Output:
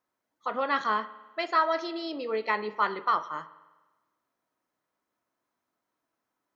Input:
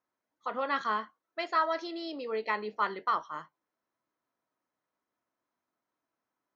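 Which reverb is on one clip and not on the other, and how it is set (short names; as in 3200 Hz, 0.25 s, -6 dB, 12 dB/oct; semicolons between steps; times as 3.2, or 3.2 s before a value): spring tank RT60 1.2 s, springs 49 ms, chirp 25 ms, DRR 15.5 dB; gain +3.5 dB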